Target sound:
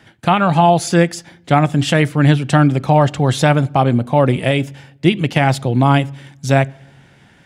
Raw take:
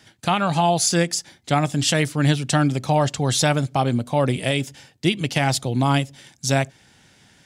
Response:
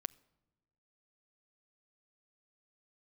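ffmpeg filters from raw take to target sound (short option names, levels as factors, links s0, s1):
-filter_complex "[0:a]asplit=2[s0][s1];[1:a]atrim=start_sample=2205,asetrate=52920,aresample=44100,lowpass=3000[s2];[s1][s2]afir=irnorm=-1:irlink=0,volume=3.35[s3];[s0][s3]amix=inputs=2:normalize=0,volume=0.708"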